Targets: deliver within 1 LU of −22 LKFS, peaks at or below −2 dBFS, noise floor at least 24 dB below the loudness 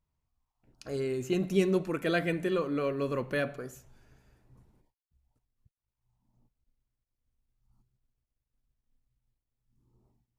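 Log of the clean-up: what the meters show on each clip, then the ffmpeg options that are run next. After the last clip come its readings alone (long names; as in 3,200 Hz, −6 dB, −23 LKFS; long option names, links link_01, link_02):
integrated loudness −30.5 LKFS; sample peak −14.0 dBFS; target loudness −22.0 LKFS
→ -af "volume=8.5dB"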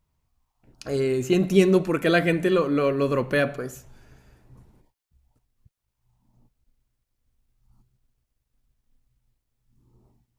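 integrated loudness −22.0 LKFS; sample peak −5.5 dBFS; background noise floor −81 dBFS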